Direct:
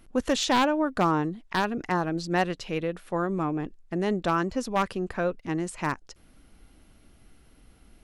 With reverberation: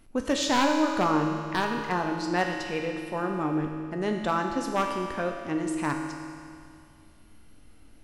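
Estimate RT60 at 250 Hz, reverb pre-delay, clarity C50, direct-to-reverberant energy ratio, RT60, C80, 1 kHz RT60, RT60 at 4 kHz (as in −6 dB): 2.3 s, 3 ms, 4.0 dB, 2.0 dB, 2.3 s, 5.0 dB, 2.3 s, 2.2 s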